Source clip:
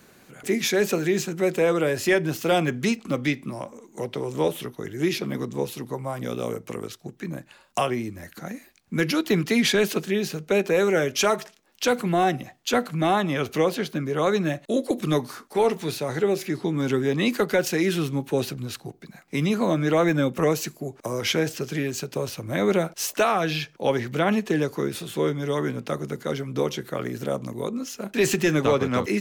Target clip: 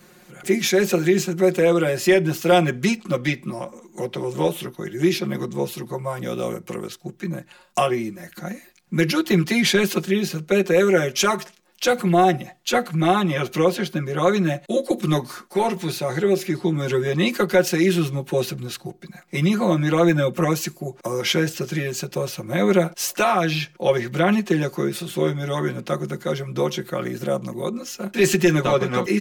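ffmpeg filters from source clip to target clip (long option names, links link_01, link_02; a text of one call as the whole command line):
ffmpeg -i in.wav -af "aecho=1:1:5.6:0.99" out.wav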